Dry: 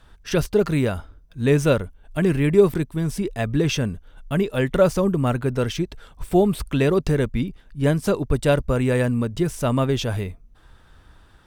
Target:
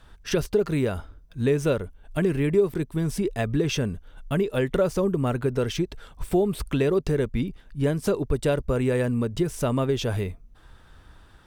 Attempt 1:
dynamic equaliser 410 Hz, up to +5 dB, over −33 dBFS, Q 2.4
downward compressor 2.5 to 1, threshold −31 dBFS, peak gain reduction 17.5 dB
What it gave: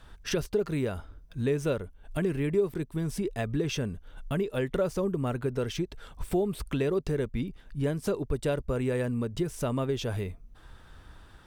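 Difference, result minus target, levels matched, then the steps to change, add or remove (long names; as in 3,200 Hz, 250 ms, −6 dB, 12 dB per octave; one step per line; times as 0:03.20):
downward compressor: peak gain reduction +5.5 dB
change: downward compressor 2.5 to 1, threshold −22 dBFS, peak gain reduction 12 dB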